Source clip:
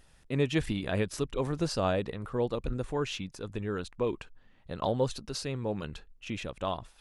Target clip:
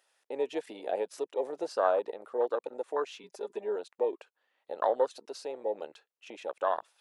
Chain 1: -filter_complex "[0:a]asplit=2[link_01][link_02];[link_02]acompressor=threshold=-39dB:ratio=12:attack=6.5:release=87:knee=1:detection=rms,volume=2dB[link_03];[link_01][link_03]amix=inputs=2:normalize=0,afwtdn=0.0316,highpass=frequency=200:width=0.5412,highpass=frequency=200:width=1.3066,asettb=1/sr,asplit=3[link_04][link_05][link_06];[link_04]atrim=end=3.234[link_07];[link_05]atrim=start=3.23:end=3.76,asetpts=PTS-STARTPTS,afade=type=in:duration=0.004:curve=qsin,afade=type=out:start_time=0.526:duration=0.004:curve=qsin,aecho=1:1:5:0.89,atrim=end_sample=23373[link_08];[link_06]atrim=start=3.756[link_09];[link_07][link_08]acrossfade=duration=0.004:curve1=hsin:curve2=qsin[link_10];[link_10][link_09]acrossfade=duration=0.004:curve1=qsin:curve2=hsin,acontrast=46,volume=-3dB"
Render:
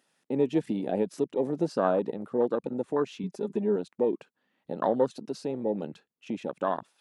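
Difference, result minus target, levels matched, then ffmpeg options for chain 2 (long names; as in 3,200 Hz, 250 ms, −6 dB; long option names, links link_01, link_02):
250 Hz band +12.0 dB
-filter_complex "[0:a]asplit=2[link_01][link_02];[link_02]acompressor=threshold=-39dB:ratio=12:attack=6.5:release=87:knee=1:detection=rms,volume=2dB[link_03];[link_01][link_03]amix=inputs=2:normalize=0,afwtdn=0.0316,highpass=frequency=470:width=0.5412,highpass=frequency=470:width=1.3066,asettb=1/sr,asplit=3[link_04][link_05][link_06];[link_04]atrim=end=3.234[link_07];[link_05]atrim=start=3.23:end=3.76,asetpts=PTS-STARTPTS,afade=type=in:duration=0.004:curve=qsin,afade=type=out:start_time=0.526:duration=0.004:curve=qsin,aecho=1:1:5:0.89,atrim=end_sample=23373[link_08];[link_06]atrim=start=3.756[link_09];[link_07][link_08]acrossfade=duration=0.004:curve1=hsin:curve2=qsin[link_10];[link_10][link_09]acrossfade=duration=0.004:curve1=qsin:curve2=hsin,acontrast=46,volume=-3dB"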